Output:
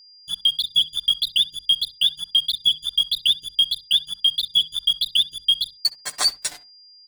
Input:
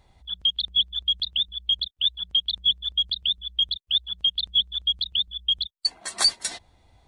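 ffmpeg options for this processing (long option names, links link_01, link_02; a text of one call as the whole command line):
ffmpeg -i in.wav -filter_complex "[0:a]aeval=exprs='sgn(val(0))*max(abs(val(0))-0.0168,0)':channel_layout=same,aecho=1:1:6.8:0.99,alimiter=limit=-15.5dB:level=0:latency=1:release=423,dynaudnorm=framelen=140:gausssize=3:maxgain=6.5dB,aeval=exprs='val(0)+0.00447*sin(2*PI*4800*n/s)':channel_layout=same,bandreject=frequency=50:width_type=h:width=6,bandreject=frequency=100:width_type=h:width=6,bandreject=frequency=150:width_type=h:width=6,bandreject=frequency=200:width_type=h:width=6,bandreject=frequency=250:width_type=h:width=6,asplit=2[link_01][link_02];[link_02]adelay=65,lowpass=frequency=2100:poles=1,volume=-15.5dB,asplit=2[link_03][link_04];[link_04]adelay=65,lowpass=frequency=2100:poles=1,volume=0.16[link_05];[link_03][link_05]amix=inputs=2:normalize=0[link_06];[link_01][link_06]amix=inputs=2:normalize=0" out.wav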